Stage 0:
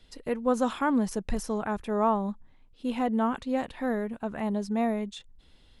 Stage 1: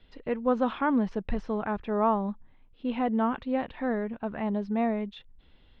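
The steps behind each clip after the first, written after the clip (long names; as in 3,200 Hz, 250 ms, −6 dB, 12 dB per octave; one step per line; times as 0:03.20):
low-pass filter 3,400 Hz 24 dB per octave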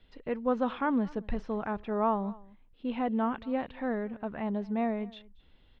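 single-tap delay 230 ms −22.5 dB
level −3 dB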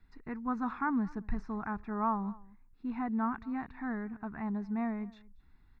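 phaser with its sweep stopped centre 1,300 Hz, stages 4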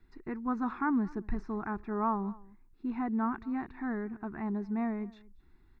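parametric band 360 Hz +12.5 dB 0.42 octaves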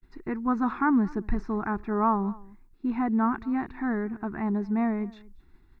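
downward expander −56 dBFS
level +6.5 dB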